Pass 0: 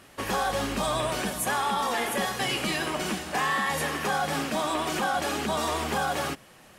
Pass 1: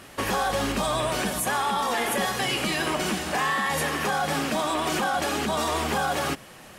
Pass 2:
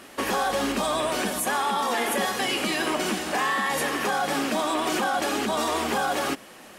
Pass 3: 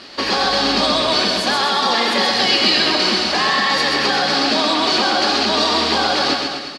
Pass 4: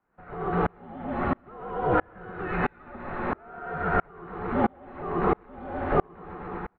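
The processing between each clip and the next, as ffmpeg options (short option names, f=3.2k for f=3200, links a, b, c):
-af "acontrast=65,alimiter=limit=-17dB:level=0:latency=1:release=140"
-af "lowshelf=f=180:t=q:w=1.5:g=-8.5"
-af "lowpass=f=4.5k:t=q:w=7.6,aecho=1:1:130|247|352.3|447.1|532.4:0.631|0.398|0.251|0.158|0.1,volume=4.5dB"
-af "highpass=f=400:t=q:w=0.5412,highpass=f=400:t=q:w=1.307,lowpass=f=2k:t=q:w=0.5176,lowpass=f=2k:t=q:w=0.7071,lowpass=f=2k:t=q:w=1.932,afreqshift=-380,aeval=exprs='val(0)*pow(10,-36*if(lt(mod(-1.5*n/s,1),2*abs(-1.5)/1000),1-mod(-1.5*n/s,1)/(2*abs(-1.5)/1000),(mod(-1.5*n/s,1)-2*abs(-1.5)/1000)/(1-2*abs(-1.5)/1000))/20)':c=same,volume=1dB"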